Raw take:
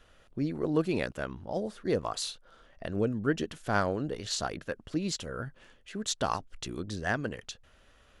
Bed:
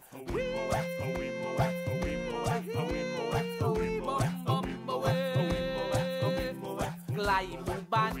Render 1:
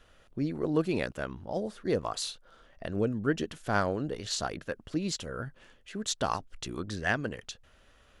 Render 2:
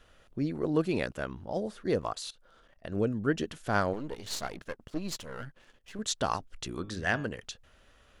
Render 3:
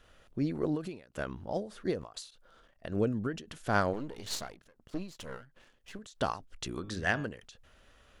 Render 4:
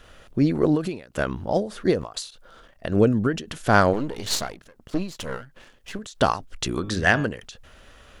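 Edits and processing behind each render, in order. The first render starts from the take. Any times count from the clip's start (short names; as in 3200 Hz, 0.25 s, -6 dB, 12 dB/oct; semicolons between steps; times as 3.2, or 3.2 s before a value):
6.73–7.13 bell 910 Hz -> 2800 Hz +8 dB 0.87 oct
2.13–2.92 level quantiser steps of 20 dB; 3.93–5.99 half-wave gain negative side -12 dB; 6.71–7.27 de-hum 102.7 Hz, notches 37
ending taper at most 140 dB/s
gain +11.5 dB; limiter -3 dBFS, peak gain reduction 1.5 dB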